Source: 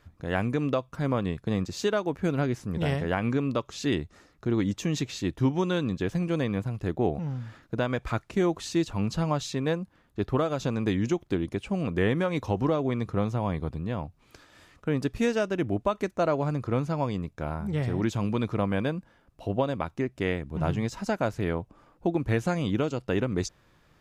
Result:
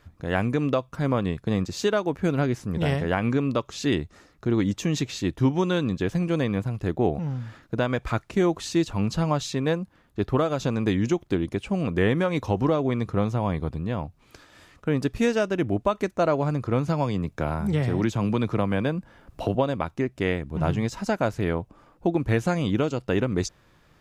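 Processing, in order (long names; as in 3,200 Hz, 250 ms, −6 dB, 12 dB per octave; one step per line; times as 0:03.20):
0:16.88–0:19.55: multiband upward and downward compressor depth 70%
level +3 dB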